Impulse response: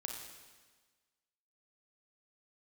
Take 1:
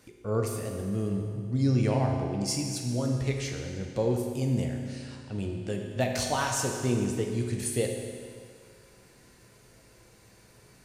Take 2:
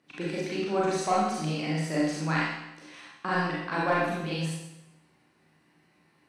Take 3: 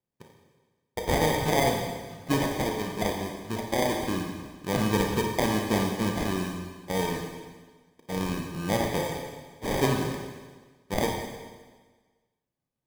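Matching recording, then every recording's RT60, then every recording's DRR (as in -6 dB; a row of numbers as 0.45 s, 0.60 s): 3; 2.1 s, 0.90 s, 1.4 s; 1.5 dB, -7.0 dB, 1.0 dB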